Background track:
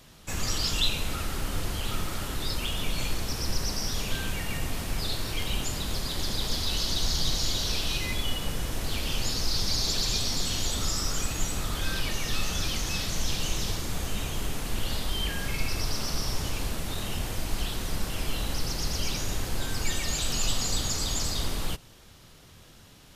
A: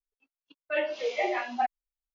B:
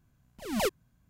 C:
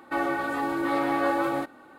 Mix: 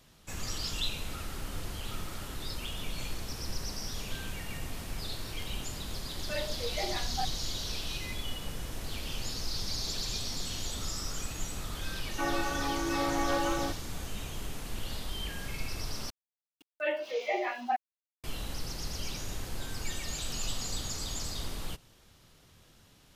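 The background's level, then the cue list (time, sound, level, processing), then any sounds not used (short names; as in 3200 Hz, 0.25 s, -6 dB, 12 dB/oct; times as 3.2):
background track -7.5 dB
5.59 add A -8 dB
12.07 add C -5.5 dB
16.1 replace with A -3 dB + sample gate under -51.5 dBFS
not used: B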